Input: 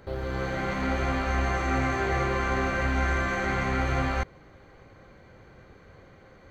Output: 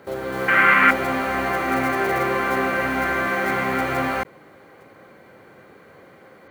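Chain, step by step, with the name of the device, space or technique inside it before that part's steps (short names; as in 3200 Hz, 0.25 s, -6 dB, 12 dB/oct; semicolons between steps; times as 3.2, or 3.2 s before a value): early digital voice recorder (BPF 210–3500 Hz; block floating point 5-bit); 0.48–0.91 band shelf 1800 Hz +14.5 dB; gain +6.5 dB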